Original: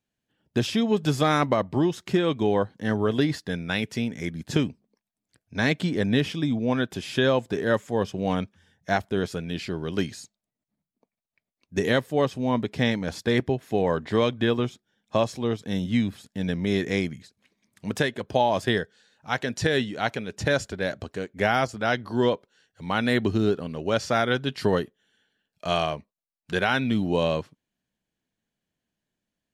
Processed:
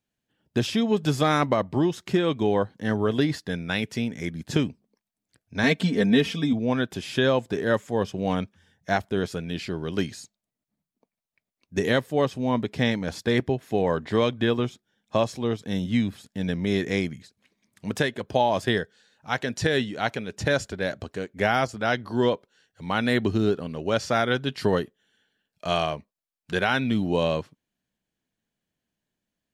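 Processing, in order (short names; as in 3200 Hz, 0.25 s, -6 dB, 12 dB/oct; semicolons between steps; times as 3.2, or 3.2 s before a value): 5.63–6.53 comb 4.4 ms, depth 80%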